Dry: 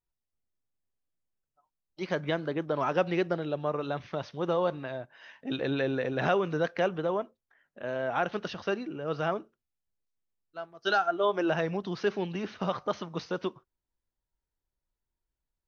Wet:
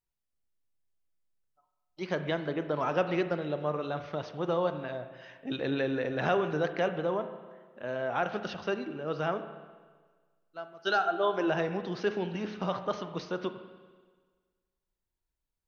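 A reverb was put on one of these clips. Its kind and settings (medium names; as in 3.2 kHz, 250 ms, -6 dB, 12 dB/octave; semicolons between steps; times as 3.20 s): spring tank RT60 1.5 s, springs 33/47 ms, chirp 50 ms, DRR 9 dB; trim -1.5 dB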